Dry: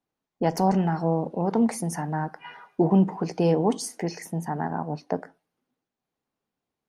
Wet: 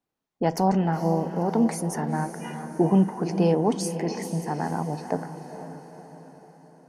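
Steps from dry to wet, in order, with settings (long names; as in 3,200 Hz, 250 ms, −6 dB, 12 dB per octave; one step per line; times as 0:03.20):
feedback delay with all-pass diffusion 485 ms, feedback 52%, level −10 dB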